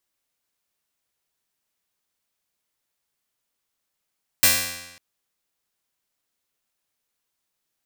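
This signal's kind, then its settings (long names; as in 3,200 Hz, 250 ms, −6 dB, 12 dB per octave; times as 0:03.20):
Karplus-Strong string F2, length 0.55 s, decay 1.05 s, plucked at 0.2, bright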